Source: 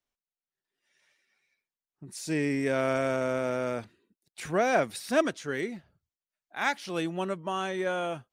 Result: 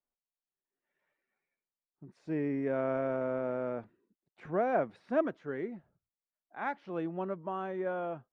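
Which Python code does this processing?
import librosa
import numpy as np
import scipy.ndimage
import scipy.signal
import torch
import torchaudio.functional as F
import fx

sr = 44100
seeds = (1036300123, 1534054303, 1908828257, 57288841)

y = scipy.signal.sosfilt(scipy.signal.butter(2, 1200.0, 'lowpass', fs=sr, output='sos'), x)
y = fx.peak_eq(y, sr, hz=75.0, db=-8.5, octaves=1.1)
y = y * 10.0 ** (-3.5 / 20.0)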